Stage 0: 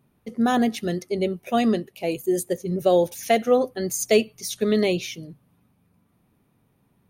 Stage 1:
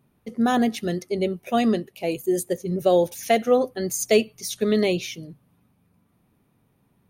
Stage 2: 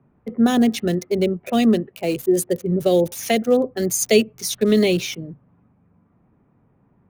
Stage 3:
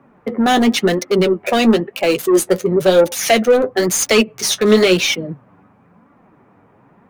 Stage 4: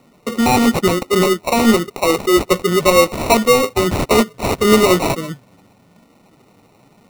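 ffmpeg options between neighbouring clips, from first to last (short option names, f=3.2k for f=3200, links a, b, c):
-af anull
-filter_complex "[0:a]acrossover=split=220|490|2000[a][b][c][d];[c]acompressor=threshold=-34dB:ratio=6[e];[d]aeval=exprs='val(0)*gte(abs(val(0)),0.00891)':c=same[f];[a][b][e][f]amix=inputs=4:normalize=0,volume=5.5dB"
-filter_complex "[0:a]asplit=2[a][b];[b]acompressor=threshold=-24dB:ratio=6,volume=-1dB[c];[a][c]amix=inputs=2:normalize=0,asplit=2[d][e];[e]highpass=f=720:p=1,volume=19dB,asoftclip=type=tanh:threshold=-2dB[f];[d][f]amix=inputs=2:normalize=0,lowpass=f=4k:p=1,volume=-6dB,flanger=delay=3.5:depth=7.1:regen=41:speed=0.98:shape=sinusoidal,volume=2.5dB"
-af "acrusher=samples=27:mix=1:aa=0.000001"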